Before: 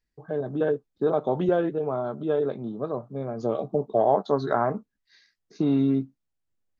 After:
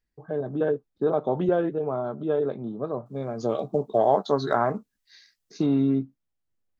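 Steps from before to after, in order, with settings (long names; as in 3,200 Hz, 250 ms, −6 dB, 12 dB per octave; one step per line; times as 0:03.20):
high-shelf EQ 2,800 Hz −5 dB, from 0:03.06 +9.5 dB, from 0:05.66 −4.5 dB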